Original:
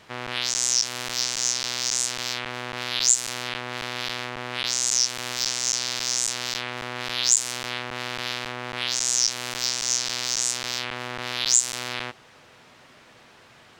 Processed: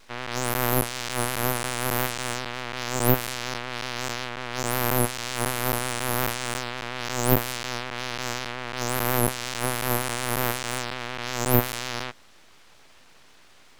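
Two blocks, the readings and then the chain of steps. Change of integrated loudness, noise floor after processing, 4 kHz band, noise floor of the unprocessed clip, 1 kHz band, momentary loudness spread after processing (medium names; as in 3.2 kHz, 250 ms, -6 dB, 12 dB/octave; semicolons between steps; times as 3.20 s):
-2.5 dB, -52 dBFS, -7.0 dB, -52 dBFS, +6.0 dB, 9 LU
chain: vibrato 5.5 Hz 55 cents; full-wave rectifier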